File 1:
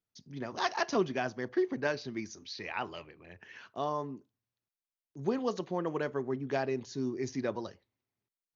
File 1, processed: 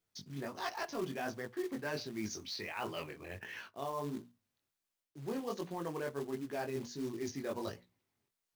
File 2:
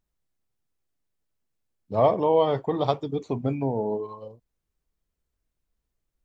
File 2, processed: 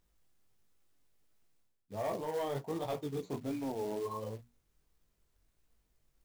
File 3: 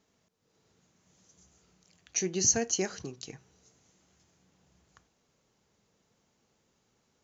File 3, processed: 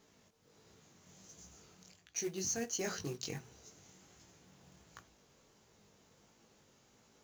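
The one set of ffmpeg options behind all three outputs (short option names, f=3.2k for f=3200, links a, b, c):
-af "asoftclip=type=tanh:threshold=-15dB,bandreject=f=60:t=h:w=6,bandreject=f=120:t=h:w=6,bandreject=f=180:t=h:w=6,bandreject=f=240:t=h:w=6,flanger=delay=17.5:depth=4.7:speed=1.4,acrusher=bits=4:mode=log:mix=0:aa=0.000001,areverse,acompressor=threshold=-47dB:ratio=4,areverse,volume=9dB"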